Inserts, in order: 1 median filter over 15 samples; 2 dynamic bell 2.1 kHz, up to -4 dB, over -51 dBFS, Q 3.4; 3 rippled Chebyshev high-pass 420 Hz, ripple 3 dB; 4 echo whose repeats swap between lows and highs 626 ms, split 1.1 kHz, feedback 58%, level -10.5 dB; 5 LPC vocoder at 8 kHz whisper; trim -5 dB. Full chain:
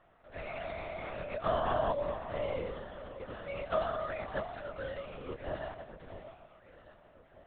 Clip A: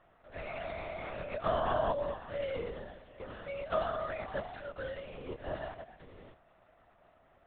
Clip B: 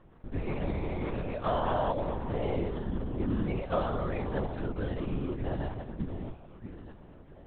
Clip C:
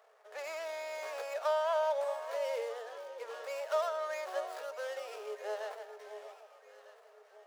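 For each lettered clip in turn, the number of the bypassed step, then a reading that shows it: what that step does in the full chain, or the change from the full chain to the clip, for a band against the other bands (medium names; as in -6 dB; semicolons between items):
4, momentary loudness spread change +1 LU; 3, 250 Hz band +11.5 dB; 5, 4 kHz band +2.0 dB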